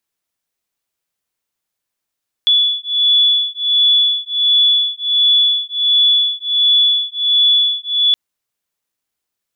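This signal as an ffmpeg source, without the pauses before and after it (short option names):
-f lavfi -i "aevalsrc='0.2*(sin(2*PI*3430*t)+sin(2*PI*3431.4*t))':d=5.67:s=44100"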